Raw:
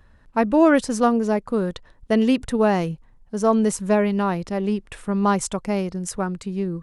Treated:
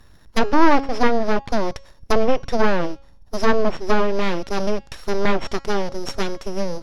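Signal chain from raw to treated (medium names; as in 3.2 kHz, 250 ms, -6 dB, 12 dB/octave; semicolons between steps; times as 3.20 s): sorted samples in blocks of 8 samples; full-wave rectifier; low-pass that closes with the level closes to 2.1 kHz, closed at -15.5 dBFS; de-hum 274.8 Hz, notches 32; trim +5 dB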